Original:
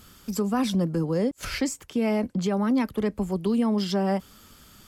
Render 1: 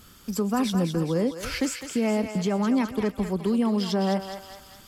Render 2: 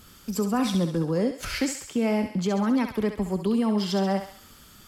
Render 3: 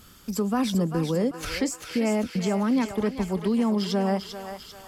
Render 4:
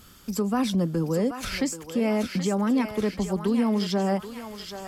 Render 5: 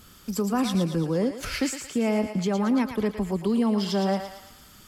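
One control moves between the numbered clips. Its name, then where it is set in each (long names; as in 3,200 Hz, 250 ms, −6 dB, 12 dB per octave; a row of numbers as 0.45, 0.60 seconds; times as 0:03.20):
feedback echo with a high-pass in the loop, delay time: 208, 67, 394, 780, 113 milliseconds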